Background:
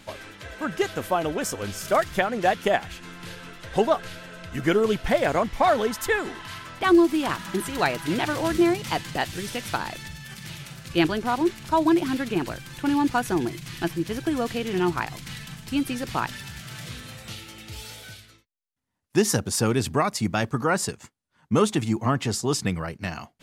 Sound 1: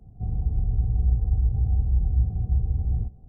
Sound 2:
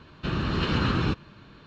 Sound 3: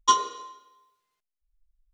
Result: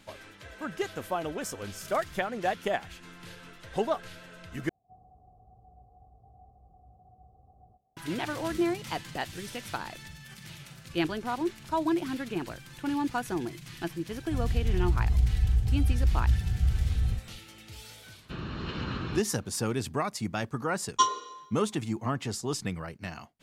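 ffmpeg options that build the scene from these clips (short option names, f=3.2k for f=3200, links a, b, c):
-filter_complex "[1:a]asplit=2[a][b];[0:a]volume=-7.5dB[c];[a]asplit=3[d][e][f];[d]bandpass=f=730:t=q:w=8,volume=0dB[g];[e]bandpass=f=1.09k:t=q:w=8,volume=-6dB[h];[f]bandpass=f=2.44k:t=q:w=8,volume=-9dB[i];[g][h][i]amix=inputs=3:normalize=0[j];[c]asplit=2[k][l];[k]atrim=end=4.694[m];[j]atrim=end=3.28,asetpts=PTS-STARTPTS,volume=-2dB[n];[l]atrim=start=7.966[o];[b]atrim=end=3.28,asetpts=PTS-STARTPTS,volume=-2.5dB,afade=t=in:d=0.004:c=hsin,afade=t=out:st=3.276:d=0.004:c=hsin,adelay=14110[p];[2:a]atrim=end=1.66,asetpts=PTS-STARTPTS,volume=-9.5dB,afade=t=in:d=0.004:c=hsin,afade=t=out:st=1.656:d=0.004:c=hsin,adelay=18060[q];[3:a]atrim=end=1.93,asetpts=PTS-STARTPTS,volume=-3.5dB,afade=t=in:d=0.004:c=hsin,afade=t=out:st=1.926:d=0.004:c=hsin,adelay=20910[r];[m][n]acrossfade=d=0.004:c1=hsin:c2=hsin[s];[s][o]acrossfade=d=0.004:c1=hsin:c2=hsin[t];[t][p][q][r]amix=inputs=4:normalize=0"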